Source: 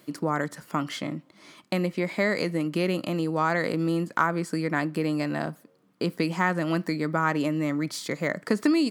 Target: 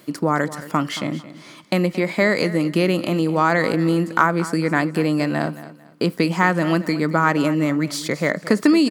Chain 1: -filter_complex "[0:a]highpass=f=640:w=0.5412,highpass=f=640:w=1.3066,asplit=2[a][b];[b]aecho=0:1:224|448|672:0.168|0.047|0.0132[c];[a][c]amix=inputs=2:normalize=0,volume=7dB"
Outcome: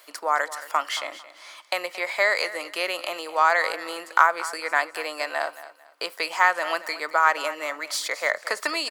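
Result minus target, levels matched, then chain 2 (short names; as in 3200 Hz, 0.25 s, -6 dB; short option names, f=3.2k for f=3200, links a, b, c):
500 Hz band -3.0 dB
-filter_complex "[0:a]asplit=2[a][b];[b]aecho=0:1:224|448|672:0.168|0.047|0.0132[c];[a][c]amix=inputs=2:normalize=0,volume=7dB"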